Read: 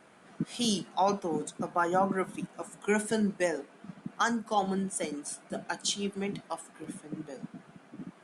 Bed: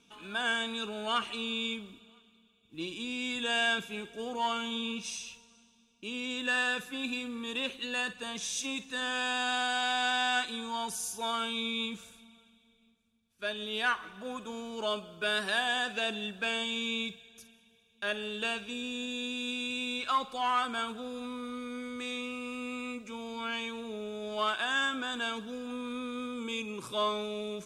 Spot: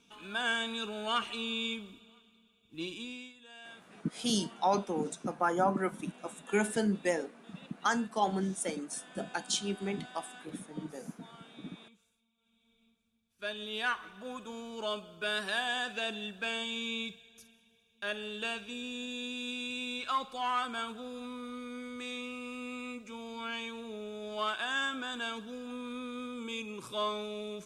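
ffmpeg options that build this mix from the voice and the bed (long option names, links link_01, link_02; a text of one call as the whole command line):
ffmpeg -i stem1.wav -i stem2.wav -filter_complex "[0:a]adelay=3650,volume=-1.5dB[link_01];[1:a]volume=18.5dB,afade=type=out:start_time=2.88:duration=0.45:silence=0.0841395,afade=type=in:start_time=12.37:duration=0.42:silence=0.105925[link_02];[link_01][link_02]amix=inputs=2:normalize=0" out.wav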